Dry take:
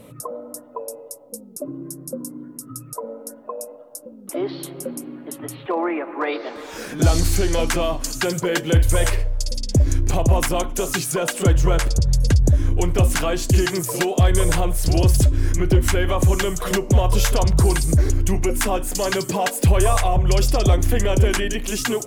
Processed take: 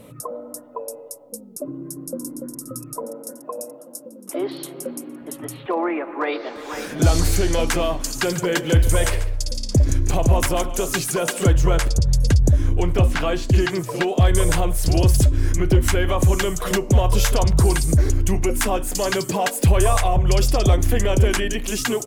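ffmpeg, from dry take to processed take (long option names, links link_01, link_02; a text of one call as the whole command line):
ffmpeg -i in.wav -filter_complex "[0:a]asplit=2[link_01][link_02];[link_02]afade=type=in:start_time=1.67:duration=0.01,afade=type=out:start_time=2.25:duration=0.01,aecho=0:1:290|580|870|1160|1450|1740|2030|2320|2610|2900|3190|3480:0.501187|0.40095|0.32076|0.256608|0.205286|0.164229|0.131383|0.105107|0.0840853|0.0672682|0.0538146|0.0430517[link_03];[link_01][link_03]amix=inputs=2:normalize=0,asettb=1/sr,asplit=3[link_04][link_05][link_06];[link_04]atrim=end=3.034[link_07];[link_05]atrim=start=3.03:end=5.22,asetpts=PTS-STARTPTS,afade=type=in:duration=0.004:curve=qsin,afade=type=out:start_time=2.186:duration=0.004:curve=qsin,highpass=190[link_08];[link_06]atrim=start=5.216[link_09];[link_07][link_08]acrossfade=duration=0.004:curve1=hsin:curve2=qsin[link_10];[link_10][link_09]acrossfade=duration=0.004:curve1=qsin:curve2=hsin,asplit=2[link_11][link_12];[link_12]afade=type=in:start_time=6.14:duration=0.01,afade=type=out:start_time=7.01:duration=0.01,aecho=0:1:500|1000|1500|2000|2500|3000|3500|4000:0.375837|0.225502|0.135301|0.0811809|0.0487085|0.0292251|0.0175351|0.010521[link_13];[link_11][link_13]amix=inputs=2:normalize=0,asettb=1/sr,asplit=3[link_14][link_15][link_16];[link_14]atrim=end=8.034[link_17];[link_15]atrim=start=8.03:end=11.5,asetpts=PTS-STARTPTS,afade=type=in:duration=0.004:curve=qsin,afade=type=out:start_time=3.466:duration=0.004:curve=qsin,aecho=1:1:143:0.188,atrim=end_sample=153027[link_18];[link_16]atrim=start=11.496[link_19];[link_17][link_18]acrossfade=duration=0.004:curve1=hsin:curve2=qsin[link_20];[link_20][link_19]acrossfade=duration=0.004:curve1=qsin:curve2=hsin,asettb=1/sr,asplit=3[link_21][link_22][link_23];[link_21]atrim=end=12.674[link_24];[link_22]atrim=start=12.67:end=14.21,asetpts=PTS-STARTPTS,afade=type=in:duration=0.004:curve=qsin,afade=type=out:start_time=1.536:duration=0.004:curve=qsin,acrossover=split=4500[link_25][link_26];[link_26]acompressor=threshold=-42dB:ratio=4:attack=1:release=60[link_27];[link_25][link_27]amix=inputs=2:normalize=0[link_28];[link_23]atrim=start=14.206[link_29];[link_24][link_28]acrossfade=duration=0.004:curve1=hsin:curve2=qsin[link_30];[link_30][link_29]acrossfade=duration=0.004:curve1=qsin:curve2=hsin" out.wav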